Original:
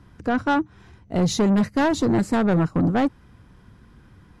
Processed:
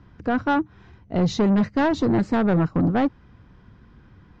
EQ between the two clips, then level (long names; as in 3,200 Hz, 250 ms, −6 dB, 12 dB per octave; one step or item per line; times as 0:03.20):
low-pass filter 7,000 Hz 24 dB per octave
high-frequency loss of the air 110 metres
0.0 dB